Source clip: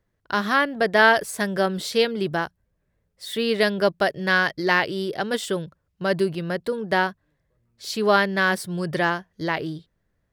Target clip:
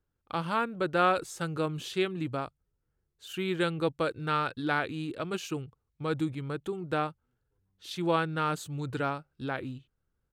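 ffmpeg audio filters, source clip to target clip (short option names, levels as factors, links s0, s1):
-af "lowshelf=f=230:g=2.5,asetrate=36028,aresample=44100,atempo=1.22405,volume=0.355"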